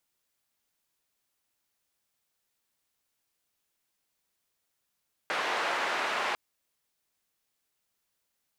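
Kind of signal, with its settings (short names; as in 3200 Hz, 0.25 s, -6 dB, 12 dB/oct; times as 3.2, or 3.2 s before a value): noise band 540–1700 Hz, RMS -30.5 dBFS 1.05 s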